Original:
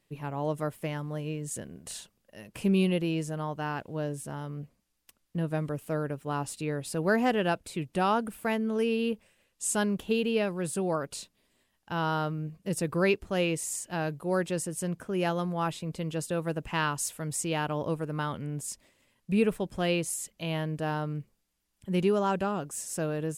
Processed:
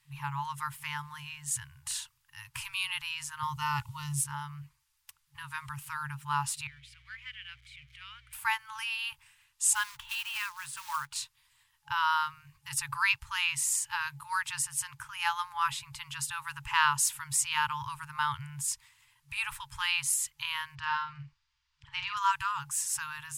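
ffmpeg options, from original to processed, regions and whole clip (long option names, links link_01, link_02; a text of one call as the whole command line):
ffmpeg -i in.wav -filter_complex "[0:a]asettb=1/sr,asplit=3[link_01][link_02][link_03];[link_01]atrim=end=3.434[link_04];[link_02]atrim=start=3.43:end=4.24,asetpts=PTS-STARTPTS,afade=type=in:duration=0.004:curve=qsin,afade=type=out:start_time=0.806:duration=0.004:curve=qsin,asuperstop=centerf=1600:order=8:qfactor=7,bass=frequency=250:gain=10,treble=frequency=4000:gain=8[link_05];[link_03]atrim=start=4.236[link_06];[link_04][link_05]acrossfade=duration=0.004:curve1=hsin:curve2=qsin[link_07];[link_07][link_06]acrossfade=duration=0.004:curve1=qsin:curve2=hsin,asettb=1/sr,asplit=3[link_08][link_09][link_10];[link_08]atrim=end=6.674[link_11];[link_09]atrim=start=6.67:end=8.33,asetpts=PTS-STARTPTS,afade=type=in:duration=0.004:curve=qsin,afade=type=out:start_time=1.656:duration=0.004:curve=qsin,aeval=exprs='val(0)+0.5*0.0106*sgn(val(0))':channel_layout=same,asplit=3[link_12][link_13][link_14];[link_12]bandpass=frequency=270:width_type=q:width=8,volume=0dB[link_15];[link_13]bandpass=frequency=2290:width_type=q:width=8,volume=-6dB[link_16];[link_14]bandpass=frequency=3010:width_type=q:width=8,volume=-9dB[link_17];[link_15][link_16][link_17]amix=inputs=3:normalize=0,aeval=exprs='val(0)+0.00112*(sin(2*PI*60*n/s)+sin(2*PI*2*60*n/s)/2+sin(2*PI*3*60*n/s)/3+sin(2*PI*4*60*n/s)/4+sin(2*PI*5*60*n/s)/5)':channel_layout=same[link_18];[link_10]atrim=start=8.326[link_19];[link_11][link_18]acrossfade=duration=0.004:curve1=hsin:curve2=qsin[link_20];[link_20][link_19]acrossfade=duration=0.004:curve1=qsin:curve2=hsin,asettb=1/sr,asplit=3[link_21][link_22][link_23];[link_21]atrim=end=9.734[link_24];[link_22]atrim=start=9.73:end=11.16,asetpts=PTS-STARTPTS,afade=type=in:duration=0.004:curve=qsin,afade=type=out:start_time=1.426:duration=0.004:curve=qsin,lowpass=frequency=2700:poles=1,equalizer=frequency=140:width=0.31:gain=-9,acrusher=bits=4:mode=log:mix=0:aa=0.000001[link_25];[link_23]atrim=start=11.156[link_26];[link_24][link_25]acrossfade=duration=0.004:curve1=hsin:curve2=qsin[link_27];[link_27][link_26]acrossfade=duration=0.004:curve1=qsin:curve2=hsin,asettb=1/sr,asplit=3[link_28][link_29][link_30];[link_28]atrim=end=20.754[link_31];[link_29]atrim=start=20.75:end=22.17,asetpts=PTS-STARTPTS,afade=type=in:duration=0.004:curve=qsin,afade=type=out:start_time=1.416:duration=0.004:curve=qsin,lowpass=frequency=5300:width=0.5412,lowpass=frequency=5300:width=1.3066,asplit=2[link_32][link_33];[link_33]adelay=49,volume=-6.5dB[link_34];[link_32][link_34]amix=inputs=2:normalize=0,atrim=end_sample=62622[link_35];[link_30]atrim=start=22.166[link_36];[link_31][link_35]acrossfade=duration=0.004:curve1=hsin:curve2=qsin[link_37];[link_37][link_36]acrossfade=duration=0.004:curve1=qsin:curve2=hsin,afftfilt=real='re*(1-between(b*sr/4096,150,850))':imag='im*(1-between(b*sr/4096,150,850))':win_size=4096:overlap=0.75,lowshelf=frequency=140:gain=-8,acontrast=30" out.wav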